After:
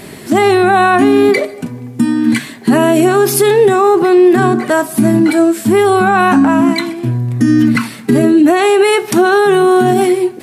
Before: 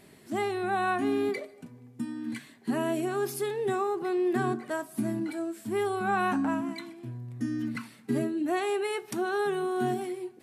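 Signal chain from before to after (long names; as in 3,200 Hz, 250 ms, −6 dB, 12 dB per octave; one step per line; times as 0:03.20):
boost into a limiter +24.5 dB
level −1 dB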